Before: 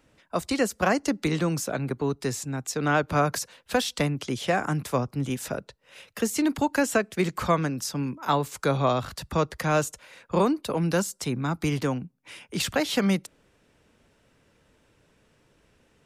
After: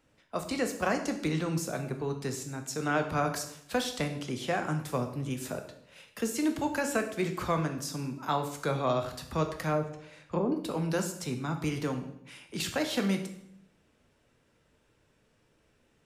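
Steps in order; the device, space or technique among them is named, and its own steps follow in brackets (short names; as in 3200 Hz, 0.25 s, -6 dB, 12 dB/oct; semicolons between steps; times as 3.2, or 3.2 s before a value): 9.69–10.52 treble ducked by the level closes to 590 Hz, closed at -18 dBFS; bathroom (reverb RT60 0.75 s, pre-delay 8 ms, DRR 5.5 dB); gain -6.5 dB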